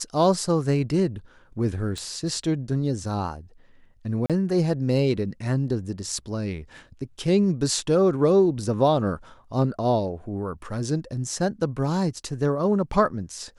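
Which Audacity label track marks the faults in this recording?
1.980000	1.980000	click −21 dBFS
4.260000	4.300000	drop-out 37 ms

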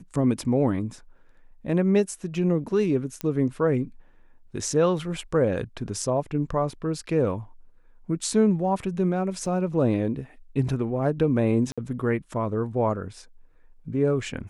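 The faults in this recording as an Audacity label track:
3.210000	3.210000	click −14 dBFS
9.460000	9.460000	drop-out 2.4 ms
11.720000	11.780000	drop-out 56 ms

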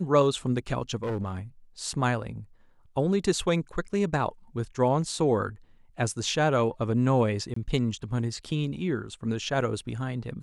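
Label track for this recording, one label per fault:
1.030000	1.390000	clipping −26 dBFS
7.540000	7.560000	drop-out 24 ms

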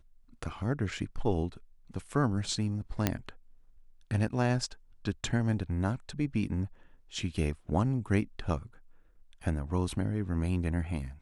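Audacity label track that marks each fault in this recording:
3.070000	3.070000	click −10 dBFS

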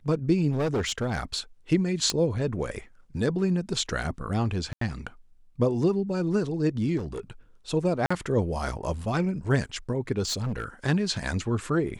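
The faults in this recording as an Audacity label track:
0.500000	1.390000	clipping −22.5 dBFS
2.100000	2.100000	click −10 dBFS
4.730000	4.810000	drop-out 83 ms
6.970000	7.200000	clipping −29 dBFS
8.060000	8.110000	drop-out 45 ms
10.250000	10.640000	clipping −25.5 dBFS

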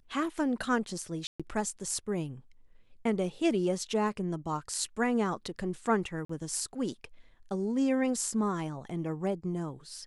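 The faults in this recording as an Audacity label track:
1.270000	1.400000	drop-out 126 ms
6.250000	6.290000	drop-out 44 ms

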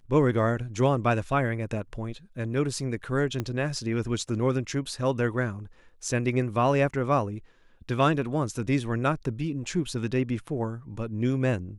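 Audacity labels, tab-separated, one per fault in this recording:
3.400000	3.400000	click −16 dBFS

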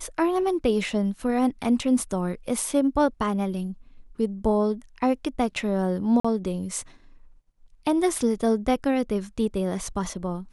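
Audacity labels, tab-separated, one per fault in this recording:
6.200000	6.250000	drop-out 45 ms

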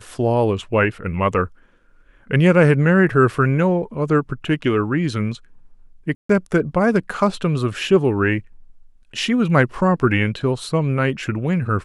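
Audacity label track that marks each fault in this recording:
6.150000	6.290000	drop-out 144 ms

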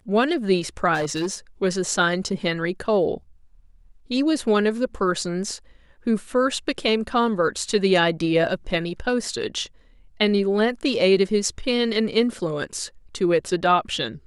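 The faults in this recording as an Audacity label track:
0.940000	1.360000	clipping −20.5 dBFS

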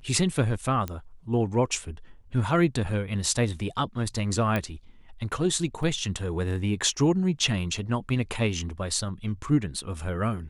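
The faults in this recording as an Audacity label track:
0.880000	0.880000	click −17 dBFS
4.560000	4.560000	click −14 dBFS
5.830000	5.830000	drop-out 3.1 ms

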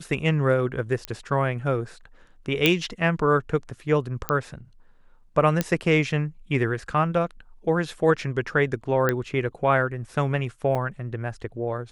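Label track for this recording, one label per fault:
1.050000	1.050000	click −14 dBFS
2.660000	2.660000	click −4 dBFS
4.290000	4.290000	click −9 dBFS
5.610000	5.610000	click −8 dBFS
9.090000	9.090000	click −9 dBFS
10.750000	10.750000	drop-out 2.6 ms

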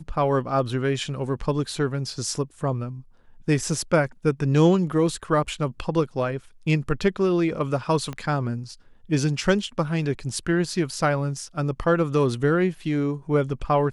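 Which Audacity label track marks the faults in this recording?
8.130000	8.130000	click −19 dBFS

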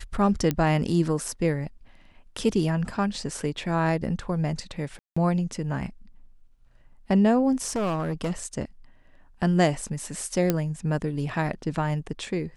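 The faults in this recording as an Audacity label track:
0.510000	0.510000	click −11 dBFS
4.990000	5.170000	drop-out 175 ms
7.660000	8.320000	clipping −23 dBFS
10.500000	10.500000	click −8 dBFS

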